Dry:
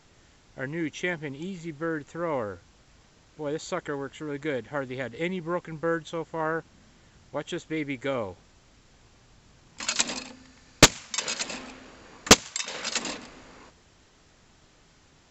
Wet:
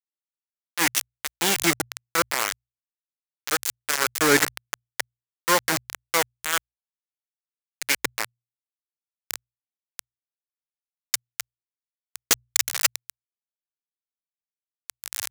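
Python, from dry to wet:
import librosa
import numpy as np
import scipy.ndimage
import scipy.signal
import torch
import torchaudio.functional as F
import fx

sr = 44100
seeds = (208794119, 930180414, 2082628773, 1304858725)

p1 = fx.recorder_agc(x, sr, target_db=-11.5, rise_db_per_s=8.8, max_gain_db=30)
p2 = fx.auto_swell(p1, sr, attack_ms=782.0)
p3 = p2 + fx.echo_alternate(p2, sr, ms=129, hz=1100.0, feedback_pct=70, wet_db=-13.0, dry=0)
p4 = np.where(np.abs(p3) >= 10.0 ** (-29.0 / 20.0), p3, 0.0)
p5 = scipy.signal.sosfilt(scipy.signal.butter(2, 73.0, 'highpass', fs=sr, output='sos'), p4)
p6 = fx.peak_eq(p5, sr, hz=1700.0, db=9.5, octaves=1.5)
p7 = fx.hum_notches(p6, sr, base_hz=60, count=2)
p8 = 10.0 ** (-25.5 / 20.0) * (np.abs((p7 / 10.0 ** (-25.5 / 20.0) + 3.0) % 4.0 - 2.0) - 1.0)
p9 = p7 + F.gain(torch.from_numpy(p8), -6.0).numpy()
p10 = fx.bass_treble(p9, sr, bass_db=-7, treble_db=13)
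y = F.gain(torch.from_numpy(p10), 5.0).numpy()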